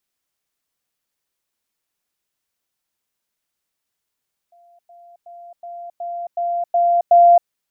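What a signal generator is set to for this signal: level ladder 693 Hz -48.5 dBFS, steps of 6 dB, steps 8, 0.27 s 0.10 s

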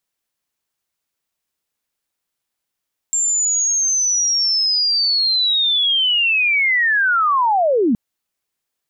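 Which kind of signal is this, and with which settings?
sweep linear 7.4 kHz -> 200 Hz -15 dBFS -> -12.5 dBFS 4.82 s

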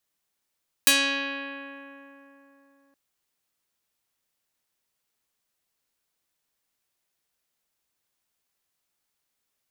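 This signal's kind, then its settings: plucked string C#4, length 2.07 s, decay 3.58 s, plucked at 0.39, medium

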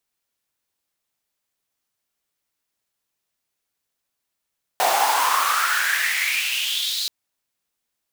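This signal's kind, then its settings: swept filtered noise pink, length 2.28 s highpass, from 690 Hz, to 4.2 kHz, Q 6, exponential, gain ramp -6 dB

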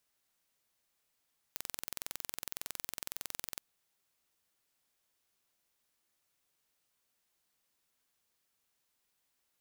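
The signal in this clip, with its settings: pulse train 21.8 per s, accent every 0, -11 dBFS 2.04 s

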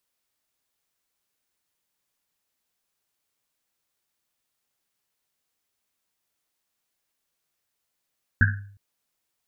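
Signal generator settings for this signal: Risset drum length 0.36 s, pitch 100 Hz, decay 0.62 s, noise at 1.6 kHz, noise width 280 Hz, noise 40%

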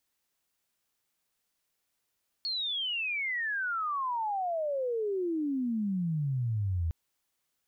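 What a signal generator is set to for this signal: sweep logarithmic 4.4 kHz -> 79 Hz -30 dBFS -> -27 dBFS 4.46 s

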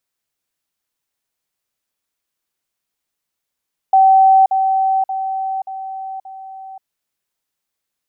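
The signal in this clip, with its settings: level ladder 768 Hz -6.5 dBFS, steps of -6 dB, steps 5, 0.53 s 0.05 s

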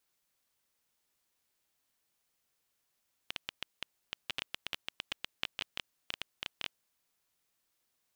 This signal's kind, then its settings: random clicks 9.2 per s -17.5 dBFS 3.87 s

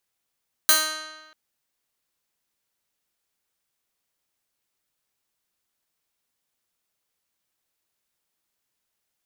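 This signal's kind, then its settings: plucked string D#4, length 0.64 s, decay 1.25 s, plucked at 0.12, bright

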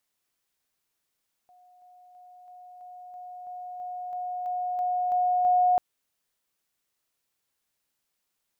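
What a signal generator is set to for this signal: level ladder 724 Hz -54 dBFS, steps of 3 dB, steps 13, 0.33 s 0.00 s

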